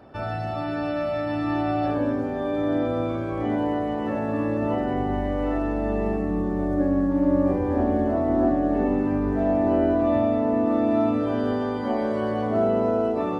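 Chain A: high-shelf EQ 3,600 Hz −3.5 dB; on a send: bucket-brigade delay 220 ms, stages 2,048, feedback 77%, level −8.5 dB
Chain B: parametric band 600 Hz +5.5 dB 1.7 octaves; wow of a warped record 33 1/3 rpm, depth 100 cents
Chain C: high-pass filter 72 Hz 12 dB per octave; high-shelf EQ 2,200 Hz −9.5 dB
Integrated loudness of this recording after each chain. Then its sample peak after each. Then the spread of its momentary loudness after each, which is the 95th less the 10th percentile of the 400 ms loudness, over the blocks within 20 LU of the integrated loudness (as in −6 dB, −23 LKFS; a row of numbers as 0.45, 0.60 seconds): −23.0, −20.5, −24.5 LKFS; −8.0, −7.0, −10.5 dBFS; 6, 6, 6 LU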